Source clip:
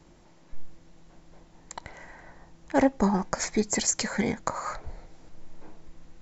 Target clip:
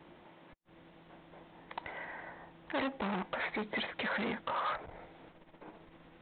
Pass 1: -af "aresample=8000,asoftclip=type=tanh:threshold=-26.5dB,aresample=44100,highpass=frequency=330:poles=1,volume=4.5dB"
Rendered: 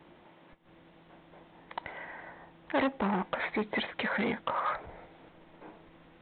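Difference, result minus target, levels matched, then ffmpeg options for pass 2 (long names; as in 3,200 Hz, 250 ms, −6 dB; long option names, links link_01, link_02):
soft clipping: distortion −4 dB
-af "aresample=8000,asoftclip=type=tanh:threshold=-34dB,aresample=44100,highpass=frequency=330:poles=1,volume=4.5dB"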